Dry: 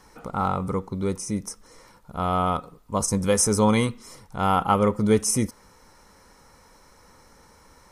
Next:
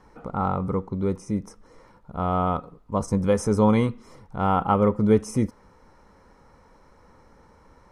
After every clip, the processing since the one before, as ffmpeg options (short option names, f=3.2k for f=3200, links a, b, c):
-af "lowpass=f=1.1k:p=1,volume=1.5dB"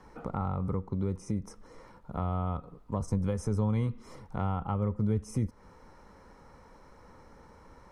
-filter_complex "[0:a]acrossover=split=130[a][b];[b]acompressor=threshold=-32dB:ratio=8[c];[a][c]amix=inputs=2:normalize=0"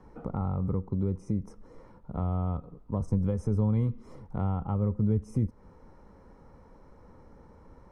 -af "tiltshelf=f=970:g=6.5,volume=-3.5dB"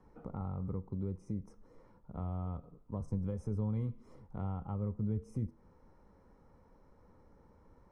-af "flanger=delay=9.7:depth=1.1:regen=-86:speed=1.7:shape=triangular,volume=-4.5dB"